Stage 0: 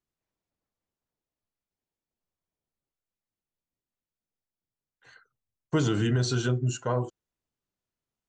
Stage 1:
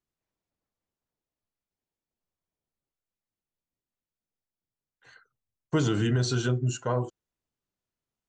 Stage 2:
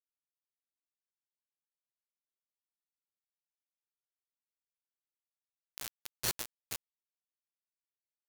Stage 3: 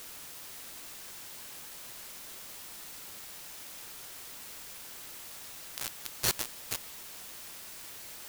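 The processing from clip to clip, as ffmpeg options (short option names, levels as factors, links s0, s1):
-af anull
-af "aresample=16000,asoftclip=type=hard:threshold=0.0282,aresample=44100,acrusher=bits=4:mix=0:aa=0.000001,volume=1.58"
-af "aeval=exprs='val(0)+0.5*0.0119*sgn(val(0))':c=same,volume=1.68"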